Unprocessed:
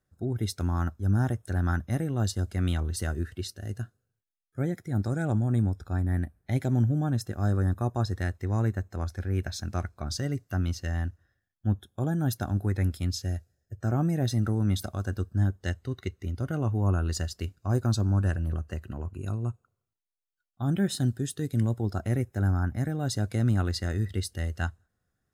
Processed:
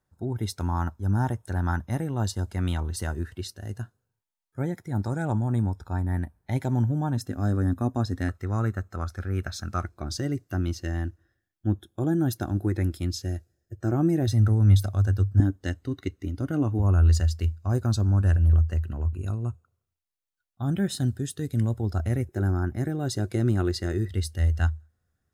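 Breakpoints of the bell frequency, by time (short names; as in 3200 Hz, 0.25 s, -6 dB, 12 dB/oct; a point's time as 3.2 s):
bell +12.5 dB 0.3 oct
920 Hz
from 7.17 s 260 Hz
from 8.29 s 1300 Hz
from 9.84 s 330 Hz
from 14.27 s 100 Hz
from 15.4 s 290 Hz
from 16.79 s 81 Hz
from 22.29 s 360 Hz
from 24.08 s 78 Hz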